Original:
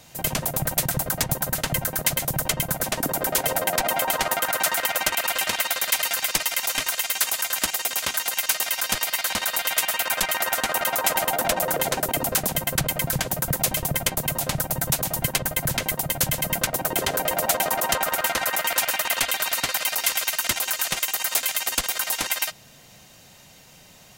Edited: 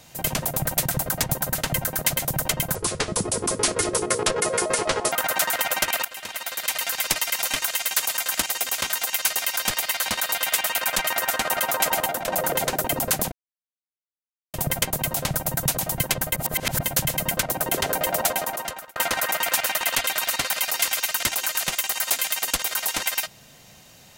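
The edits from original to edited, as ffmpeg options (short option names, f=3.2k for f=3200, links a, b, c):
-filter_complex "[0:a]asplit=10[a][b][c][d][e][f][g][h][i][j];[a]atrim=end=2.754[k];[b]atrim=start=2.75:end=4.36,asetpts=PTS-STARTPTS,asetrate=29988,aresample=44100,atrim=end_sample=104413,asetpts=PTS-STARTPTS[l];[c]atrim=start=4.356:end=5.29,asetpts=PTS-STARTPTS,afade=t=out:st=0.93:d=0.004:c=hsin:silence=0.149624[m];[d]atrim=start=5.29:end=11.52,asetpts=PTS-STARTPTS,afade=t=in:d=1.05:silence=0.149624,afade=t=out:st=5.97:d=0.26:silence=0.334965[n];[e]atrim=start=11.52:end=12.56,asetpts=PTS-STARTPTS,afade=t=in:d=0.004:c=hsin:silence=0.334965,afade=t=out:st=1.036:d=0.004:c=hsin[o];[f]atrim=start=12.56:end=13.78,asetpts=PTS-STARTPTS,volume=0[p];[g]atrim=start=13.78:end=15.602,asetpts=PTS-STARTPTS,afade=t=in:d=0.004:c=hsin[q];[h]atrim=start=15.598:end=16.102,asetpts=PTS-STARTPTS,areverse[r];[i]atrim=start=16.098:end=18.2,asetpts=PTS-STARTPTS,afade=t=out:st=1.342:d=0.76[s];[j]atrim=start=18.2,asetpts=PTS-STARTPTS,afade=t=in:d=0.004:c=hsin[t];[k][l]acrossfade=d=0.004:c1=hsin:c2=hsin[u];[m][n][o][p][q]concat=n=5:v=0:a=1[v];[u][v]acrossfade=d=0.004:c1=hsin:c2=hsin[w];[w][r]acrossfade=d=0.004:c1=hsin:c2=hsin[x];[s][t]concat=n=2:v=0:a=1[y];[x][y]acrossfade=d=0.004:c1=hsin:c2=hsin"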